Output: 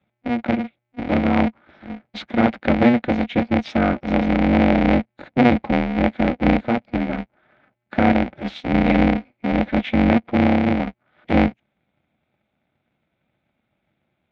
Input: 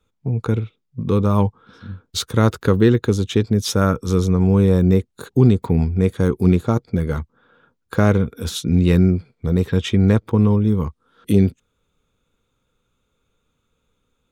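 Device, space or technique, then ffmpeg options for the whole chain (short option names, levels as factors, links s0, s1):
ring modulator pedal into a guitar cabinet: -af "aeval=exprs='val(0)*sgn(sin(2*PI*120*n/s))':c=same,highpass=76,equalizer=f=110:t=q:w=4:g=-9,equalizer=f=220:t=q:w=4:g=5,equalizer=f=390:t=q:w=4:g=-8,equalizer=f=740:t=q:w=4:g=6,equalizer=f=1100:t=q:w=4:g=-7,equalizer=f=2200:t=q:w=4:g=10,lowpass=f=3600:w=0.5412,lowpass=f=3600:w=1.3066,equalizer=f=3800:w=0.44:g=-5,volume=0.891"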